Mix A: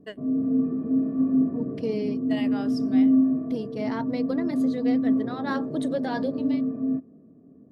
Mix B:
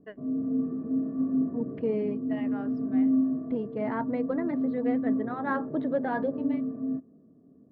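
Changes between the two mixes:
second voice +5.0 dB
master: add transistor ladder low-pass 2,300 Hz, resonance 20%

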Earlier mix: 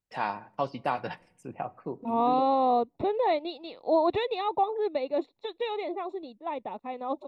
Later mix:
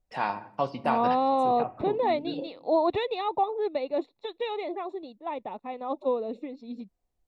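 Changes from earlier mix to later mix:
first voice: send +9.5 dB
second voice: entry −1.20 s

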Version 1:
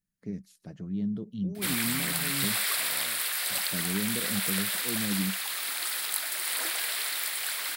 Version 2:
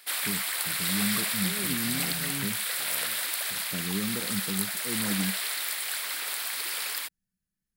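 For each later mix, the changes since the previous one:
background: entry −1.55 s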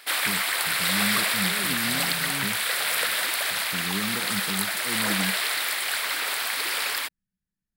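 background +9.5 dB
master: add high-shelf EQ 4,700 Hz −9.5 dB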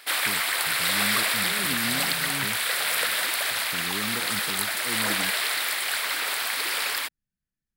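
first voice: add parametric band 190 Hz −10.5 dB 0.22 octaves

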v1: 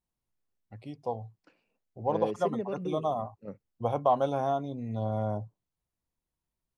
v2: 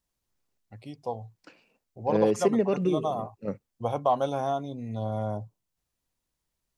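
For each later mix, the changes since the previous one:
second voice +9.5 dB
master: add high-shelf EQ 3,400 Hz +8 dB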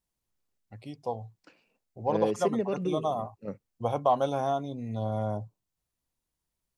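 second voice −5.0 dB

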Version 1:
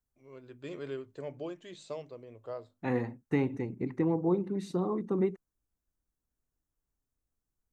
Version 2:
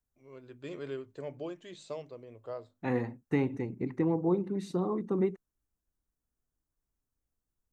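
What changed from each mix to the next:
nothing changed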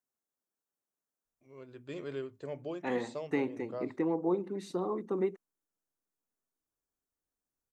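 first voice: entry +1.25 s
second voice: add high-pass filter 290 Hz 12 dB per octave

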